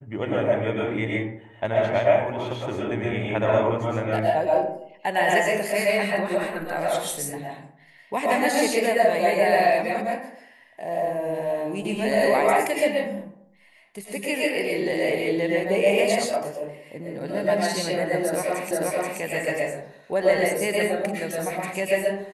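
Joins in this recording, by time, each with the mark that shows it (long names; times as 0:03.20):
0:18.71: the same again, the last 0.48 s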